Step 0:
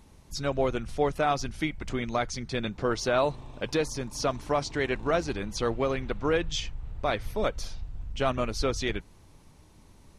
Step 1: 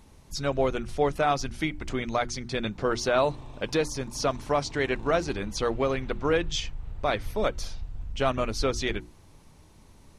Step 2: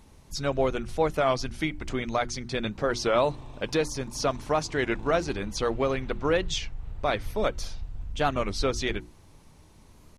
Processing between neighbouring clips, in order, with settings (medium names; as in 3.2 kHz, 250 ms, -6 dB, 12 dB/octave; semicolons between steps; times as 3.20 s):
hum notches 60/120/180/240/300/360 Hz; trim +1.5 dB
warped record 33 1/3 rpm, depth 160 cents